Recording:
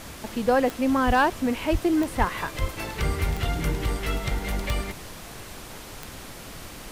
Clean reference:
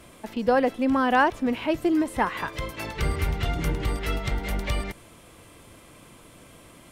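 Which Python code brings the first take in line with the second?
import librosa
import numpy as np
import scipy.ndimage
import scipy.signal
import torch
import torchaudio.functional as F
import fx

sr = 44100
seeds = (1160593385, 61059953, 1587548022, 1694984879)

y = fx.fix_declip(x, sr, threshold_db=-12.0)
y = fx.fix_declick_ar(y, sr, threshold=10.0)
y = fx.fix_deplosive(y, sr, at_s=(1.06, 1.71, 2.18, 2.6))
y = fx.noise_reduce(y, sr, print_start_s=5.43, print_end_s=5.93, reduce_db=10.0)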